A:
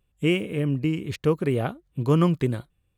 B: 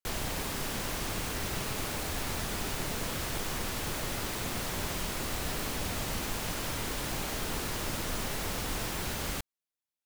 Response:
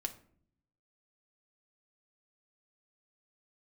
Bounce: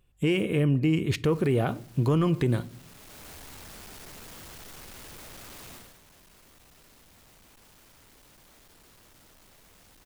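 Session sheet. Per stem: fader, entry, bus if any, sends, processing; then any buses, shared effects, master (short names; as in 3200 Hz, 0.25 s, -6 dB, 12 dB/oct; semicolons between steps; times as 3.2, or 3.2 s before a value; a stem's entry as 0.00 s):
+1.5 dB, 0.00 s, send -6.5 dB, dry
5.74 s -11 dB -> 6 s -22.5 dB, 1.25 s, no send, infinite clipping; auto duck -11 dB, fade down 1.75 s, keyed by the first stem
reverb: on, RT60 0.55 s, pre-delay 3 ms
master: soft clip -5.5 dBFS, distortion -25 dB; limiter -16.5 dBFS, peak gain reduction 9 dB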